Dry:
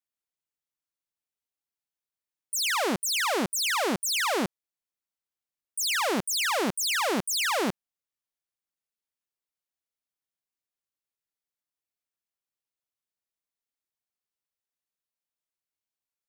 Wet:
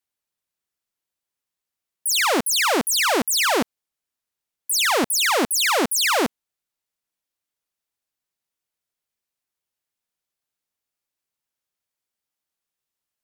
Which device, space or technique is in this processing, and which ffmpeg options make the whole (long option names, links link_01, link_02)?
nightcore: -af "asetrate=54243,aresample=44100,volume=7dB"